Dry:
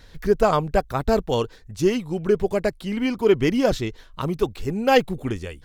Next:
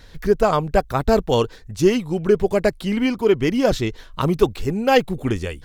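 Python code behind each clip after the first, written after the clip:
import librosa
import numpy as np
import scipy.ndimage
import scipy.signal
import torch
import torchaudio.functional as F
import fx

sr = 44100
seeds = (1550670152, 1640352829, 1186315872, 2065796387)

y = fx.rider(x, sr, range_db=3, speed_s=0.5)
y = y * librosa.db_to_amplitude(3.0)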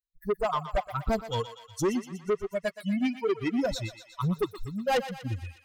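y = fx.bin_expand(x, sr, power=3.0)
y = 10.0 ** (-21.5 / 20.0) * np.tanh(y / 10.0 ** (-21.5 / 20.0))
y = fx.echo_thinned(y, sr, ms=121, feedback_pct=67, hz=760.0, wet_db=-10.5)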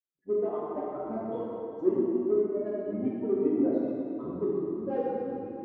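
y = fx.octave_divider(x, sr, octaves=1, level_db=-1.0)
y = fx.ladder_bandpass(y, sr, hz=370.0, resonance_pct=55)
y = fx.rev_plate(y, sr, seeds[0], rt60_s=2.7, hf_ratio=0.65, predelay_ms=0, drr_db=-7.5)
y = y * librosa.db_to_amplitude(1.5)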